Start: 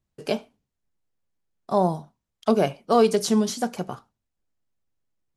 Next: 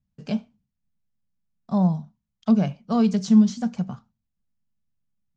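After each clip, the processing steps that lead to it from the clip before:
Butterworth low-pass 7,300 Hz 48 dB per octave
low shelf with overshoot 270 Hz +8.5 dB, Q 3
level −7 dB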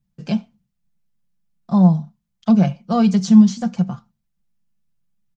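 comb filter 5.8 ms, depth 60%
level +4 dB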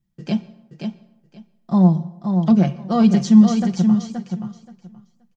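hollow resonant body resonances 340/1,900/3,200 Hz, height 10 dB, ringing for 45 ms
on a send: repeating echo 526 ms, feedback 17%, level −6 dB
on the sum: dense smooth reverb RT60 0.91 s, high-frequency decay 0.6×, pre-delay 105 ms, DRR 20 dB
level −1.5 dB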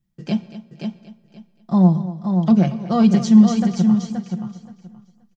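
repeating echo 233 ms, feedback 18%, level −14.5 dB

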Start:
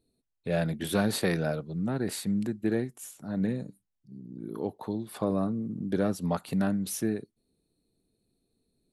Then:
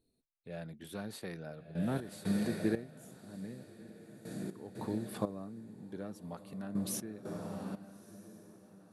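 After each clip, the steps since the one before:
feedback delay with all-pass diffusion 1,262 ms, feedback 50%, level −8.5 dB
gate pattern "x......x.x" 60 BPM −12 dB
level −4 dB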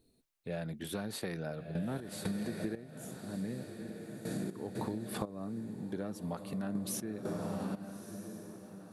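downward compressor 16 to 1, threshold −41 dBFS, peak gain reduction 15.5 dB
level +8 dB

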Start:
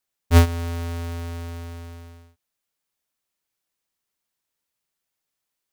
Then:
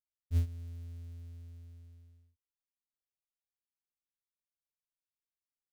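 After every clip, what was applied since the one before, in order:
guitar amp tone stack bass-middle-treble 10-0-1
level −5.5 dB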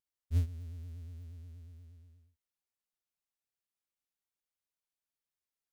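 pitch vibrato 8.4 Hz 100 cents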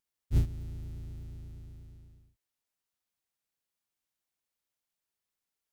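sub-harmonics by changed cycles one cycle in 3, inverted
level +4 dB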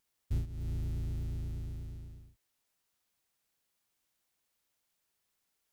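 downward compressor 6 to 1, threshold −39 dBFS, peak gain reduction 17 dB
level +7.5 dB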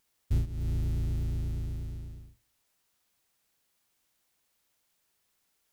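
convolution reverb RT60 0.65 s, pre-delay 52 ms, DRR 24 dB
level +5.5 dB

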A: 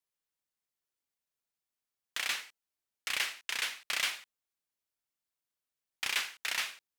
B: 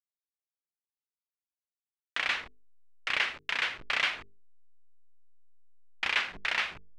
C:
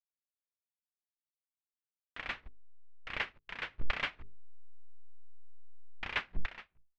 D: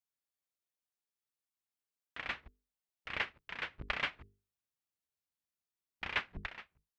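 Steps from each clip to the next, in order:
hold until the input has moved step −44 dBFS; low-pass filter 2,700 Hz 12 dB per octave; mains-hum notches 50/100/150/200/250/300/350/400/450 Hz; level +7 dB
fade-out on the ending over 0.68 s; RIAA equalisation playback; expander for the loud parts 2.5 to 1, over −48 dBFS; level +3 dB
high-pass filter 49 Hz

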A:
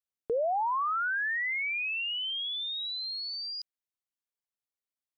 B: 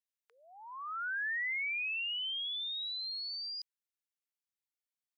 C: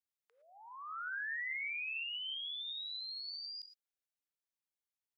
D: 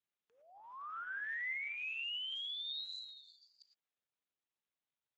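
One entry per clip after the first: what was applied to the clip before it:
high-pass filter 1,500 Hz 24 dB per octave; level −3.5 dB
convolution reverb, pre-delay 3 ms, DRR 7.5 dB; level −5 dB
level +1 dB; Speex 13 kbit/s 16,000 Hz

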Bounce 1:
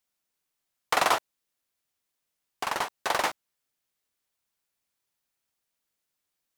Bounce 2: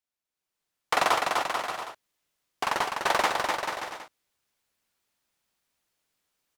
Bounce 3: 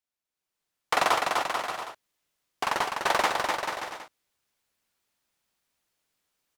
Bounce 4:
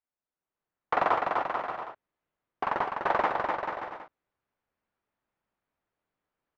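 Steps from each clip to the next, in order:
on a send: bouncing-ball delay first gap 250 ms, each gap 0.75×, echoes 5; on the sum: automatic gain control gain up to 12 dB; high-shelf EQ 7,700 Hz −6 dB; level −7.5 dB
no processing that can be heard
low-pass filter 1,500 Hz 12 dB per octave

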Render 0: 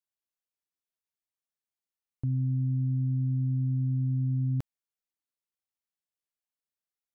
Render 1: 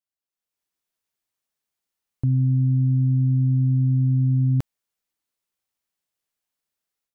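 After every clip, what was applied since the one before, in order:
automatic gain control gain up to 11 dB
level −2.5 dB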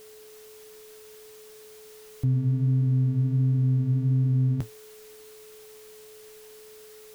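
converter with a step at zero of −40 dBFS
flanger 1.4 Hz, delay 4.6 ms, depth 9 ms, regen −55%
steady tone 430 Hz −47 dBFS

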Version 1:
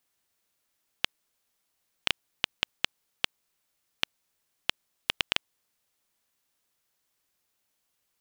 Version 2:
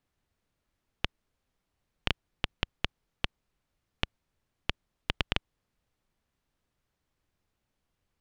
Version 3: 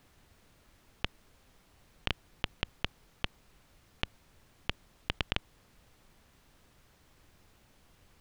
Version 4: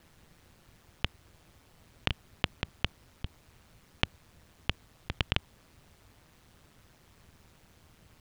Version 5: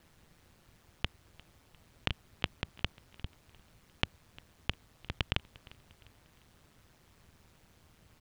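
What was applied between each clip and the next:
RIAA equalisation playback
compressor whose output falls as the input rises −38 dBFS, ratio −1; level +7.5 dB
ring modulation 80 Hz; level +6 dB
repeating echo 351 ms, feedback 43%, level −22.5 dB; level −3 dB

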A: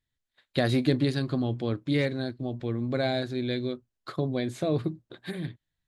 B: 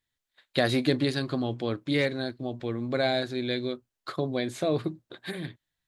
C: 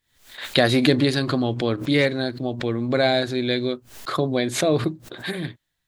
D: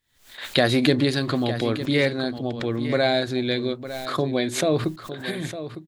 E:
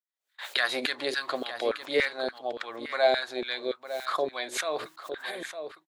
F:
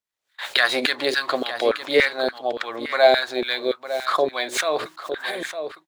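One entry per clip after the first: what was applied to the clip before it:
low-shelf EQ 260 Hz −9.5 dB; level +3.5 dB
background raised ahead of every attack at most 110 dB per second; level +6.5 dB
single-tap delay 906 ms −12 dB; level −1.5 dB
noise gate −39 dBFS, range −27 dB; auto-filter high-pass saw down 3.5 Hz 430–1,600 Hz; level −5.5 dB
running median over 3 samples; level +8 dB

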